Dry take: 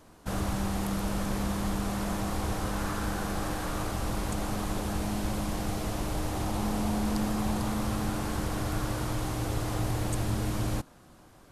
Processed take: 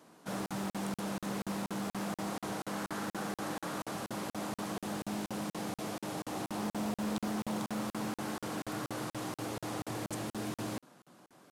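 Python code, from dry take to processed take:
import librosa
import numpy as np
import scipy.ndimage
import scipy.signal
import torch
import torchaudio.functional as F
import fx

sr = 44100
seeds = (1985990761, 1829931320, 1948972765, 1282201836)

p1 = scipy.signal.sosfilt(scipy.signal.butter(4, 150.0, 'highpass', fs=sr, output='sos'), x)
p2 = 10.0 ** (-32.0 / 20.0) * np.tanh(p1 / 10.0 ** (-32.0 / 20.0))
p3 = p1 + (p2 * 10.0 ** (-9.0 / 20.0))
p4 = fx.buffer_crackle(p3, sr, first_s=0.46, period_s=0.24, block=2048, kind='zero')
p5 = fx.doppler_dist(p4, sr, depth_ms=0.33)
y = p5 * 10.0 ** (-5.5 / 20.0)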